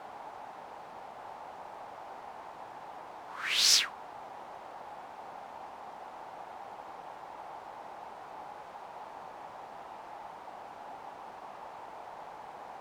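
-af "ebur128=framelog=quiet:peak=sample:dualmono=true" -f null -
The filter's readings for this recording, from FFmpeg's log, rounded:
Integrated loudness:
  I:         -33.8 LUFS
  Threshold: -43.9 LUFS
Loudness range:
  LRA:        15.1 LU
  Threshold: -53.0 LUFS
  LRA low:   -43.2 LUFS
  LRA high:  -28.1 LUFS
Sample peak:
  Peak:      -10.1 dBFS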